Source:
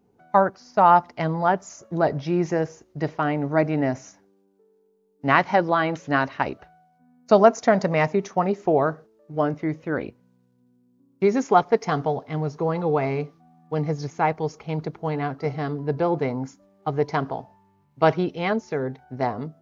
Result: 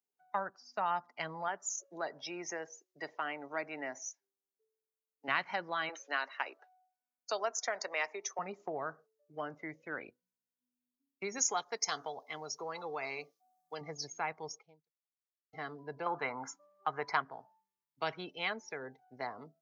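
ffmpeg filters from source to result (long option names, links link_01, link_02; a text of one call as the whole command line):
ffmpeg -i in.wav -filter_complex "[0:a]asettb=1/sr,asplit=3[link_01][link_02][link_03];[link_01]atrim=end=1.484[link_04];[link_02]atrim=start=1.48:end=5.28,asetpts=PTS-STARTPTS,afade=type=in:duration=0.004:curve=qsin,afade=type=out:start_time=3.796:duration=0.004:curve=qsin,highpass=260[link_05];[link_03]atrim=start=5.276[link_06];[link_04][link_05]acrossfade=duration=0.004:curve1=hsin:curve2=qsin[link_07];[link_07][link_06]acrossfade=duration=0.004:curve1=qsin:curve2=hsin,asettb=1/sr,asplit=3[link_08][link_09][link_10];[link_08]atrim=end=5.894[link_11];[link_09]atrim=start=5.89:end=8.39,asetpts=PTS-STARTPTS,afade=type=in:duration=0.004:curve=qsin,afade=type=out:start_time=2.496:duration=0.004:curve=qsin,highpass=frequency=340:width=0.5412,highpass=frequency=340:width=1.3066[link_12];[link_10]atrim=start=8.386[link_13];[link_11][link_12]acrossfade=duration=0.004:curve1=hsin:curve2=qsin[link_14];[link_14][link_13]acrossfade=duration=0.004:curve1=qsin:curve2=hsin,asettb=1/sr,asplit=3[link_15][link_16][link_17];[link_15]atrim=end=11.384[link_18];[link_16]atrim=start=11.38:end=13.81,asetpts=PTS-STARTPTS,afade=type=in:duration=0.004:curve=qsin,afade=type=out:start_time=2.426:duration=0.004:curve=qsin,bass=frequency=250:gain=-8,treble=frequency=4000:gain=9[link_19];[link_17]atrim=start=13.806[link_20];[link_18][link_19]acrossfade=duration=0.004:curve1=hsin:curve2=qsin[link_21];[link_21][link_20]acrossfade=duration=0.004:curve1=qsin:curve2=hsin,asettb=1/sr,asplit=3[link_22][link_23][link_24];[link_22]atrim=end=16.064[link_25];[link_23]atrim=start=16.06:end=17.22,asetpts=PTS-STARTPTS,afade=type=in:duration=0.004:curve=qsin,afade=type=out:start_time=1.156:duration=0.004:curve=qsin,equalizer=frequency=1200:width=0.64:gain=14.5[link_26];[link_24]atrim=start=17.216[link_27];[link_25][link_26]acrossfade=duration=0.004:curve1=hsin:curve2=qsin[link_28];[link_28][link_27]acrossfade=duration=0.004:curve1=qsin:curve2=hsin,asplit=2[link_29][link_30];[link_29]atrim=end=15.53,asetpts=PTS-STARTPTS,afade=type=out:start_time=14.55:duration=0.98:curve=exp[link_31];[link_30]atrim=start=15.53,asetpts=PTS-STARTPTS,afade=type=in:duration=0.004:curve=hsin[link_32];[link_31][link_32]concat=n=2:v=0:a=1,afftdn=noise_reduction=22:noise_floor=-42,acrossover=split=230[link_33][link_34];[link_34]acompressor=threshold=-29dB:ratio=2[link_35];[link_33][link_35]amix=inputs=2:normalize=0,aderivative,volume=9dB" out.wav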